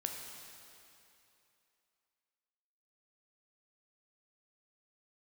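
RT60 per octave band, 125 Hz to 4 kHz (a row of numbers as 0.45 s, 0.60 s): 2.7 s, 2.7 s, 2.8 s, 2.8 s, 2.8 s, 2.6 s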